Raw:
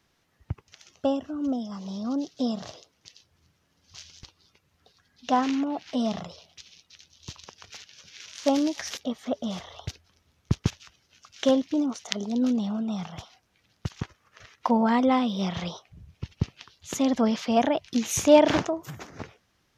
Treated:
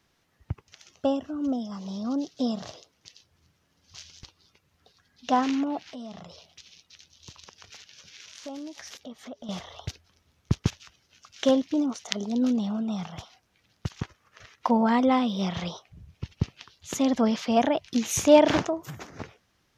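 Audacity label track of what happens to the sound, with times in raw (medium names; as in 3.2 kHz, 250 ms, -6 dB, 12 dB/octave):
5.800000	9.490000	compression 2.5:1, threshold -43 dBFS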